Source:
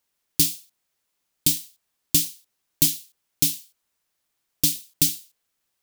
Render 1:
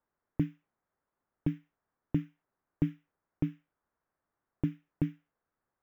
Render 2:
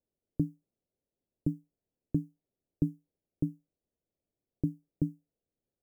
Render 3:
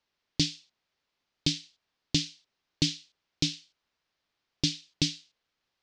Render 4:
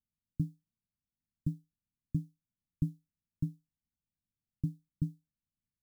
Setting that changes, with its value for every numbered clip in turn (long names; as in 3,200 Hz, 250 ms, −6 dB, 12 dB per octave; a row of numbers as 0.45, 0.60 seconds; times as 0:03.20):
inverse Chebyshev low-pass filter, stop band from: 4,000, 1,500, 11,000, 580 Hertz